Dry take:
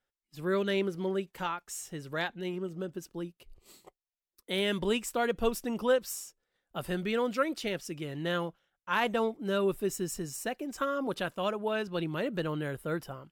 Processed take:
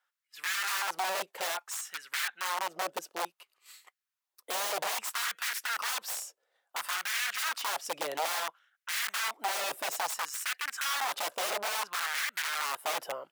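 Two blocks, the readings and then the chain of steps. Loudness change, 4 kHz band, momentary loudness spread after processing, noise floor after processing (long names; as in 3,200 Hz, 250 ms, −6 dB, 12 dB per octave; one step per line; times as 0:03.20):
0.0 dB, +5.0 dB, 6 LU, below −85 dBFS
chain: wrap-around overflow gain 32 dB
auto-filter high-pass sine 0.59 Hz 570–1,700 Hz
level +3 dB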